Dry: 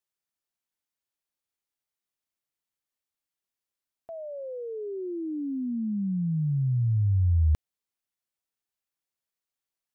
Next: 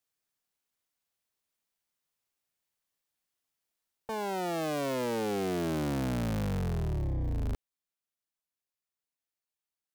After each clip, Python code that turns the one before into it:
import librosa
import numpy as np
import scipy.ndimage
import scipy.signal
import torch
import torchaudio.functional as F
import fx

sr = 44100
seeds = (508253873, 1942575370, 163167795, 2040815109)

y = fx.cycle_switch(x, sr, every=3, mode='inverted')
y = fx.rider(y, sr, range_db=4, speed_s=2.0)
y = np.clip(10.0 ** (29.5 / 20.0) * y, -1.0, 1.0) / 10.0 ** (29.5 / 20.0)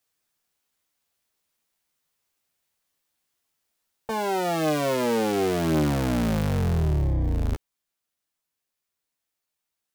y = fx.doubler(x, sr, ms=13.0, db=-7.0)
y = F.gain(torch.from_numpy(y), 7.0).numpy()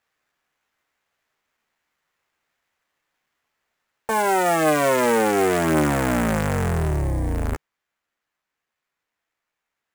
y = fx.curve_eq(x, sr, hz=(150.0, 1900.0, 5800.0), db=(0, 11, -7))
y = fx.sample_hold(y, sr, seeds[0], rate_hz=9300.0, jitter_pct=20)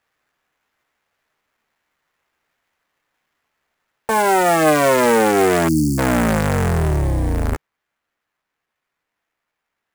y = scipy.ndimage.median_filter(x, 9, mode='constant')
y = fx.quant_float(y, sr, bits=4)
y = fx.spec_erase(y, sr, start_s=5.68, length_s=0.31, low_hz=350.0, high_hz=4300.0)
y = F.gain(torch.from_numpy(y), 4.5).numpy()